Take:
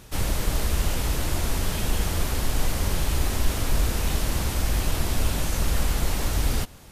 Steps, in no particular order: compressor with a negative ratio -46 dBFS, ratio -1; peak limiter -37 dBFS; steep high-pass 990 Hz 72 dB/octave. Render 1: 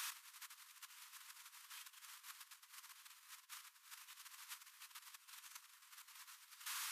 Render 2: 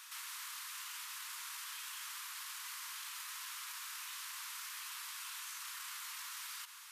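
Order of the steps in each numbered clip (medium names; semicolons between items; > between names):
compressor with a negative ratio > steep high-pass > peak limiter; steep high-pass > peak limiter > compressor with a negative ratio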